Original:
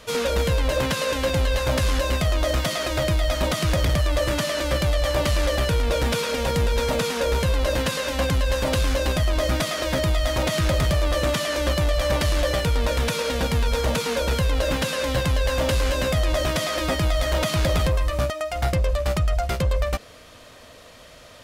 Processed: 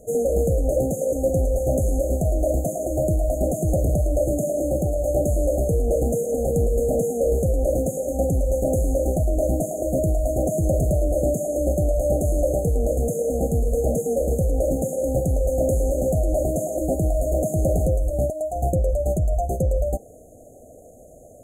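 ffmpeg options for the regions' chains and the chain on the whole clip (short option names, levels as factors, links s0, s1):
-filter_complex "[0:a]asettb=1/sr,asplit=3[s0][s1][s2];[s0]atrim=end=4.424[s3];[s1]atrim=start=4.42:end=5.06,asetpts=PTS-STARTPTS,afade=t=in:d=0.004:c=qsin,afade=t=out:st=0.636:d=0.004:c=qsin,highpass=f=180:p=1,lowshelf=f=280:g=8,volume=8.91,asoftclip=hard,volume=0.112[s4];[s2]atrim=start=5.056[s5];[s3][s4]acrossfade=d=0.004:c1=hsin:c2=qsin[s6];[s6][s5]acrossfade=d=0.004:c1=qsin:c2=hsin,afftfilt=real='re*(1-between(b*sr/4096,790,6300))':imag='im*(1-between(b*sr/4096,790,6300))':win_size=4096:overlap=0.75,equalizer=f=390:t=o:w=1.5:g=4.5"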